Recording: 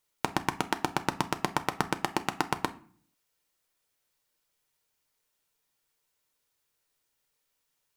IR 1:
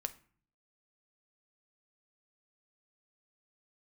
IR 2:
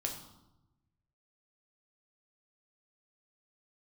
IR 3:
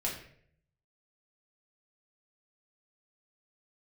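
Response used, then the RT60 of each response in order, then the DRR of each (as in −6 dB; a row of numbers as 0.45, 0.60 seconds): 1; 0.45, 0.90, 0.60 seconds; 9.0, 1.0, −4.5 decibels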